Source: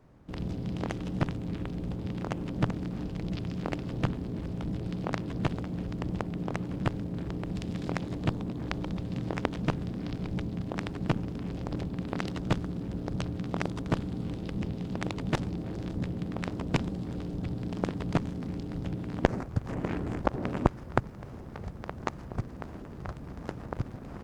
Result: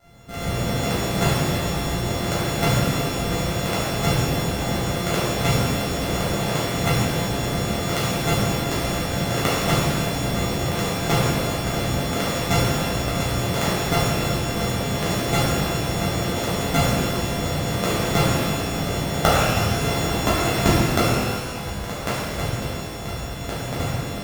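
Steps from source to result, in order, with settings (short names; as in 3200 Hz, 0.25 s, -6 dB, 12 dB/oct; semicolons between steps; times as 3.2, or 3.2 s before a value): sample sorter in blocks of 64 samples; shimmer reverb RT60 1.5 s, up +12 st, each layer -8 dB, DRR -10 dB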